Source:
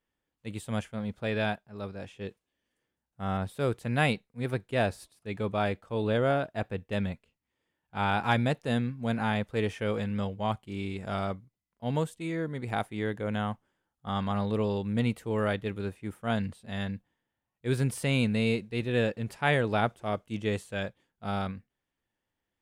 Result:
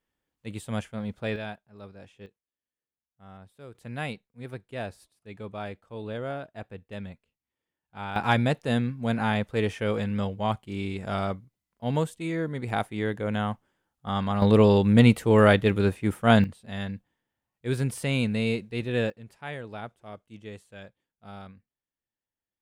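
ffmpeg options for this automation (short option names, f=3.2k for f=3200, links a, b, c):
-af "asetnsamples=n=441:p=0,asendcmd='1.36 volume volume -7dB;2.26 volume volume -17dB;3.75 volume volume -7.5dB;8.16 volume volume 3dB;14.42 volume volume 11dB;16.44 volume volume 0.5dB;19.1 volume volume -11.5dB',volume=1dB"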